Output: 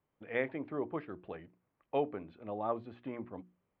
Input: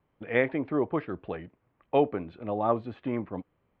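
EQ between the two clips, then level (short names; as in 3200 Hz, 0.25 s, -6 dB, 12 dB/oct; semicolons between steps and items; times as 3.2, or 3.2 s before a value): low shelf 92 Hz -5 dB; notches 60/120/180/240/300/360 Hz; -8.5 dB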